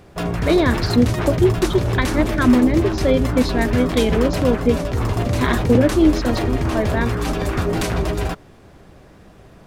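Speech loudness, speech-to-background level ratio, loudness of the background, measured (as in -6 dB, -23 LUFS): -20.0 LUFS, 2.0 dB, -22.0 LUFS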